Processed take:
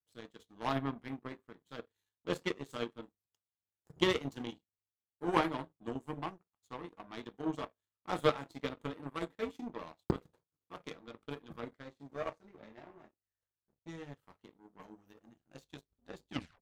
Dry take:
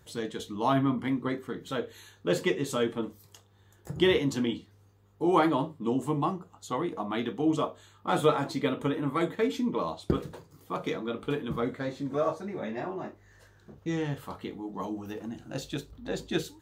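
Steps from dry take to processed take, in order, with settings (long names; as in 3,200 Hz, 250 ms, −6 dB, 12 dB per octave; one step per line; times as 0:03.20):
turntable brake at the end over 0.31 s
power curve on the samples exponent 2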